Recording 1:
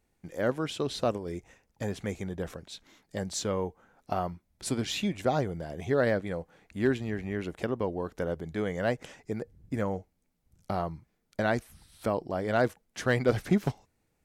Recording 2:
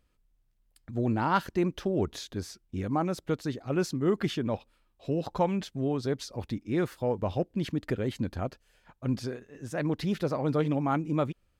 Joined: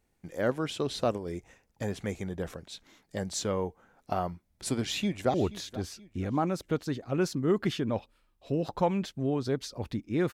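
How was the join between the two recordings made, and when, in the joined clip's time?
recording 1
4.79–5.34 echo throw 0.48 s, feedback 45%, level -17 dB
5.34 switch to recording 2 from 1.92 s

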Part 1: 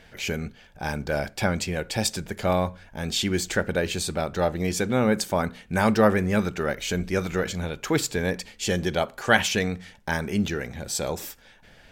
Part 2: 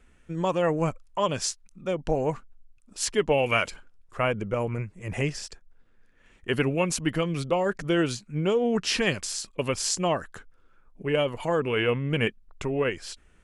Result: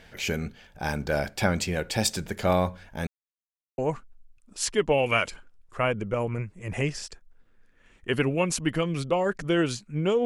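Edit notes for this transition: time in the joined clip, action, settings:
part 1
3.07–3.78 mute
3.78 switch to part 2 from 2.18 s

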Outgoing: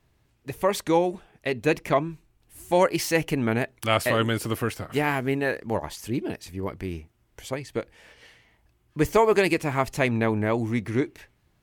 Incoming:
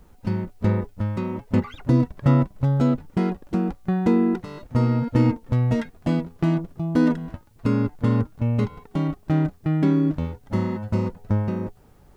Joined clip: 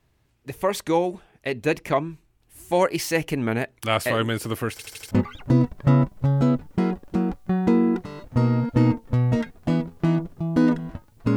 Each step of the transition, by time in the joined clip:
outgoing
4.71 stutter in place 0.08 s, 5 plays
5.11 switch to incoming from 1.5 s

